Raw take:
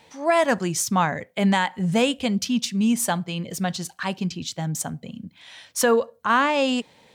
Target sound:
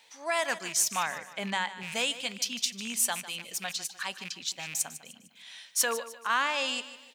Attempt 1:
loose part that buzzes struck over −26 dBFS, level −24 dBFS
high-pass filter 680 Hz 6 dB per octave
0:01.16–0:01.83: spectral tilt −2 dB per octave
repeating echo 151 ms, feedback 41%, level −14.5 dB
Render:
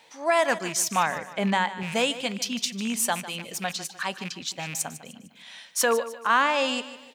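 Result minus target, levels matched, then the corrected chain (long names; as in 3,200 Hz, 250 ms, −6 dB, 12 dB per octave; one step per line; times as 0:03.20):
500 Hz band +5.5 dB
loose part that buzzes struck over −26 dBFS, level −24 dBFS
high-pass filter 2,700 Hz 6 dB per octave
0:01.16–0:01.83: spectral tilt −2 dB per octave
repeating echo 151 ms, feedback 41%, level −14.5 dB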